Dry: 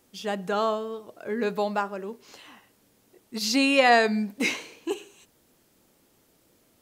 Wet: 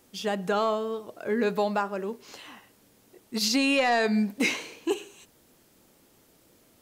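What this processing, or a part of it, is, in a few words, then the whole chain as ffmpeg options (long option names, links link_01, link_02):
soft clipper into limiter: -af "asoftclip=type=tanh:threshold=-10.5dB,alimiter=limit=-18.5dB:level=0:latency=1:release=199,volume=3dB"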